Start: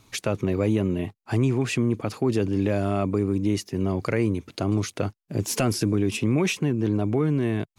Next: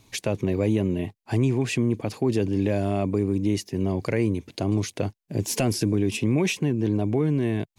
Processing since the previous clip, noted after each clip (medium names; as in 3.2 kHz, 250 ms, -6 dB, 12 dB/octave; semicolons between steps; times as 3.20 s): peaking EQ 1.3 kHz -11 dB 0.32 oct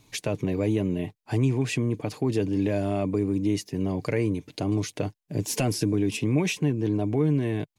comb 6.7 ms, depth 33%; trim -2 dB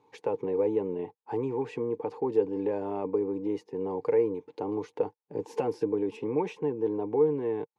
two resonant band-passes 640 Hz, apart 0.84 oct; trim +8 dB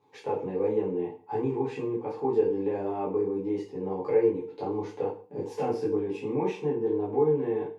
reverberation RT60 0.40 s, pre-delay 5 ms, DRR -7 dB; trim -6 dB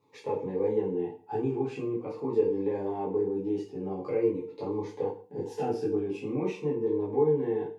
Shepard-style phaser falling 0.45 Hz